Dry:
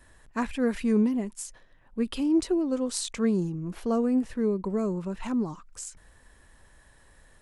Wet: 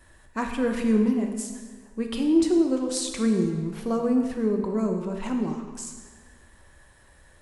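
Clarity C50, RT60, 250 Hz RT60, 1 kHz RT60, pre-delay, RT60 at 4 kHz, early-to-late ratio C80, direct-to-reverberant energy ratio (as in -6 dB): 5.5 dB, 1.6 s, 1.6 s, 1.6 s, 4 ms, 1.2 s, 7.0 dB, 3.0 dB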